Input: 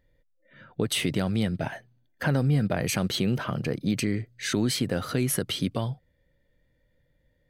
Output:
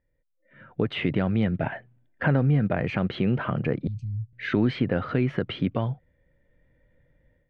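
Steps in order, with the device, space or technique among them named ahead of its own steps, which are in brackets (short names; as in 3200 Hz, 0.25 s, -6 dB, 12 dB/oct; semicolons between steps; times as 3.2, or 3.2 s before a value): 3.87–4.33 elliptic band-stop 110–6600 Hz, stop band 60 dB; action camera in a waterproof case (LPF 2600 Hz 24 dB/oct; AGC gain up to 14 dB; gain -8.5 dB; AAC 128 kbps 48000 Hz)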